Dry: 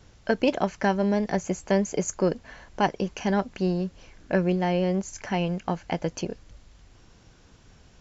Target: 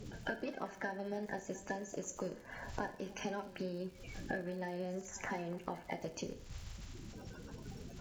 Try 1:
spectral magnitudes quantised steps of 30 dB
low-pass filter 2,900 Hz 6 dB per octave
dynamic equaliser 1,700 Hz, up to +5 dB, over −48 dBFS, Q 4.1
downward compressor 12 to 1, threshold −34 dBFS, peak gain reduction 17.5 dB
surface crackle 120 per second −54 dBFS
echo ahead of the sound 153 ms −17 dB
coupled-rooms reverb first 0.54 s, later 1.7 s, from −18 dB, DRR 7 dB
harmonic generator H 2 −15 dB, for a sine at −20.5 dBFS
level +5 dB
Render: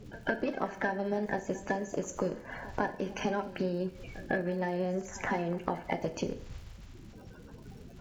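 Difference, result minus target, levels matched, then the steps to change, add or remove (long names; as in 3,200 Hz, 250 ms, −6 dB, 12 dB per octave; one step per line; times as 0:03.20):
downward compressor: peak gain reduction −9 dB; 4,000 Hz band −5.0 dB
change: downward compressor 12 to 1, threshold −43.5 dBFS, peak gain reduction 26.5 dB
remove: low-pass filter 2,900 Hz 6 dB per octave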